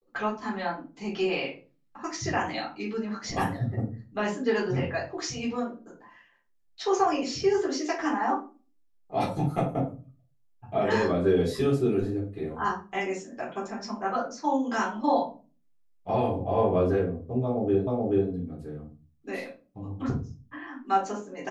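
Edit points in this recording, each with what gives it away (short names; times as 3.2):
17.87 repeat of the last 0.43 s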